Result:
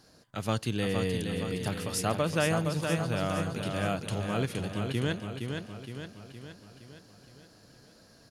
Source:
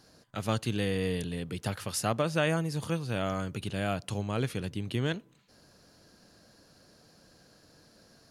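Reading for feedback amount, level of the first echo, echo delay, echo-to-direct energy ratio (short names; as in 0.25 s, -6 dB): 54%, -5.5 dB, 0.466 s, -4.0 dB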